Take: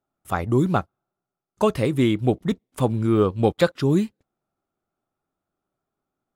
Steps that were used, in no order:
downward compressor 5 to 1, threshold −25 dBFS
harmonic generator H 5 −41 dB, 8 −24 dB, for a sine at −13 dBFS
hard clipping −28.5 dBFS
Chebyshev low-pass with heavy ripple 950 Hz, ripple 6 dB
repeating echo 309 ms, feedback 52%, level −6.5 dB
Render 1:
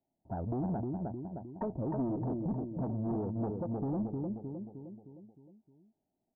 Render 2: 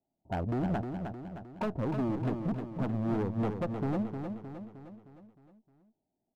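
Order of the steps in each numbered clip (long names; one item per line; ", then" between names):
downward compressor, then repeating echo, then hard clipping, then Chebyshev low-pass with heavy ripple, then harmonic generator
Chebyshev low-pass with heavy ripple, then downward compressor, then harmonic generator, then hard clipping, then repeating echo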